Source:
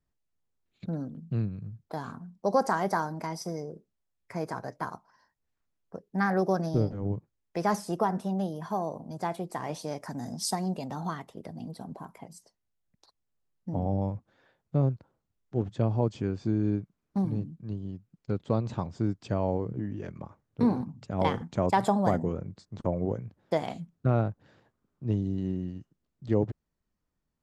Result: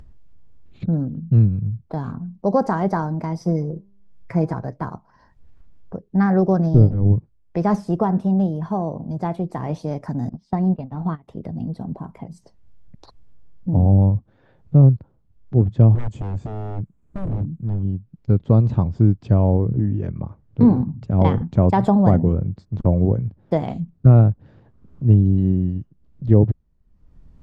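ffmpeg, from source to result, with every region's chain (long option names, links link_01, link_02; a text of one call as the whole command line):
ffmpeg -i in.wav -filter_complex "[0:a]asettb=1/sr,asplit=3[link_01][link_02][link_03];[link_01]atrim=end=3.424[link_04];[link_02]atrim=start=3.42:end=4.54,asetpts=PTS-STARTPTS,afade=type=in:duration=0.004:curve=qsin,afade=type=out:start_time=1.116:duration=0.004:curve=qsin,aecho=1:1:6:0.67,atrim=end_sample=49392,bandreject=frequency=198.9:width_type=h:width=4,bandreject=frequency=397.8:width_type=h:width=4,bandreject=frequency=596.7:width_type=h:width=4,bandreject=frequency=795.6:width_type=h:width=4,bandreject=frequency=994.5:width_type=h:width=4,bandreject=frequency=1193.4:width_type=h:width=4,bandreject=frequency=1392.3:width_type=h:width=4,bandreject=frequency=1591.2:width_type=h:width=4,bandreject=frequency=1790.1:width_type=h:width=4[link_05];[link_03]atrim=start=4.536[link_06];[link_04][link_05]acrossfade=duration=0.004:curve1=hsin:curve2=qsin[link_07];[link_07][link_06]acrossfade=duration=0.004:curve1=qsin:curve2=hsin,asettb=1/sr,asplit=3[link_08][link_09][link_10];[link_08]atrim=end=10.294[link_11];[link_09]atrim=start=10.29:end=11.28,asetpts=PTS-STARTPTS,afade=type=in:duration=0.004:curve=qsin,afade=type=out:start_time=0.986:duration=0.004:curve=qsin,lowpass=3300,agate=range=-20dB:threshold=-36dB:ratio=16:release=100:detection=peak[link_12];[link_10]atrim=start=11.276[link_13];[link_11][link_12]acrossfade=duration=0.004:curve1=hsin:curve2=qsin[link_14];[link_14][link_13]acrossfade=duration=0.004:curve1=qsin:curve2=hsin,asettb=1/sr,asplit=3[link_15][link_16][link_17];[link_15]atrim=end=15.954[link_18];[link_16]atrim=start=15.95:end=17.83,asetpts=PTS-STARTPTS,afade=type=in:duration=0.004:curve=qsin,afade=type=out:start_time=1.876:duration=0.004:curve=qsin,highshelf=frequency=6200:width_type=q:width=3:gain=6.5,acompressor=threshold=-31dB:ratio=2:attack=3.2:release=140:knee=1:detection=peak,aeval=exprs='0.0237*(abs(mod(val(0)/0.0237+3,4)-2)-1)':channel_layout=same[link_19];[link_17]atrim=start=17.826[link_20];[link_18][link_19]acrossfade=duration=0.004:curve1=hsin:curve2=qsin[link_21];[link_21][link_20]acrossfade=duration=0.004:curve1=qsin:curve2=hsin,aemphasis=mode=reproduction:type=riaa,acompressor=mode=upward:threshold=-34dB:ratio=2.5,equalizer=frequency=1600:width=1.5:gain=-2,volume=4dB" out.wav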